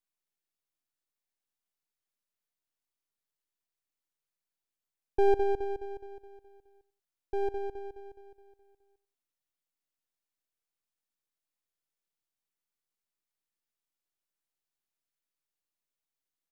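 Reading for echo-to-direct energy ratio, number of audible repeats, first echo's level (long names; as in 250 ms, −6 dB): −16.5 dB, 2, −17.0 dB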